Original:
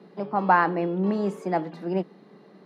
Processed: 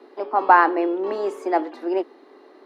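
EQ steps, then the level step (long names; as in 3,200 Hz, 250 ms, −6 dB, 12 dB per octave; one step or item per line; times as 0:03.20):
Chebyshev high-pass with heavy ripple 250 Hz, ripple 3 dB
+6.0 dB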